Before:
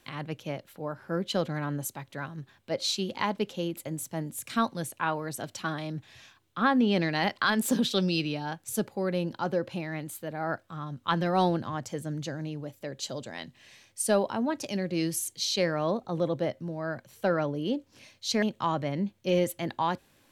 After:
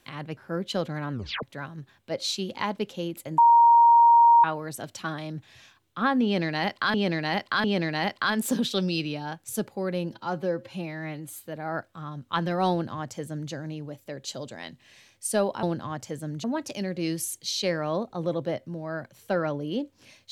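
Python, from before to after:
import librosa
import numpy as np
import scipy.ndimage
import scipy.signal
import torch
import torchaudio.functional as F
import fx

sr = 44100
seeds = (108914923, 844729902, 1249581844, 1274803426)

y = fx.edit(x, sr, fx.cut(start_s=0.37, length_s=0.6),
    fx.tape_stop(start_s=1.72, length_s=0.31),
    fx.bleep(start_s=3.98, length_s=1.06, hz=936.0, db=-12.5),
    fx.repeat(start_s=6.84, length_s=0.7, count=3),
    fx.stretch_span(start_s=9.32, length_s=0.9, factor=1.5),
    fx.duplicate(start_s=11.46, length_s=0.81, to_s=14.38), tone=tone)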